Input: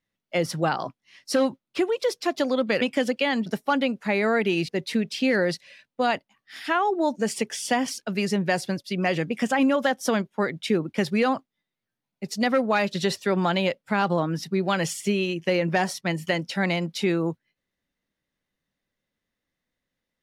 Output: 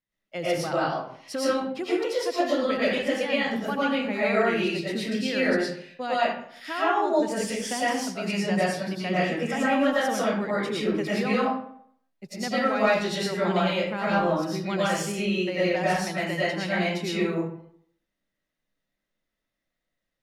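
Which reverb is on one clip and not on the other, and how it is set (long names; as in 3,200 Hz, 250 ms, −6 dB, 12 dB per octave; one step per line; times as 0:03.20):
comb and all-pass reverb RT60 0.64 s, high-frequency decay 0.65×, pre-delay 70 ms, DRR −9 dB
level −9.5 dB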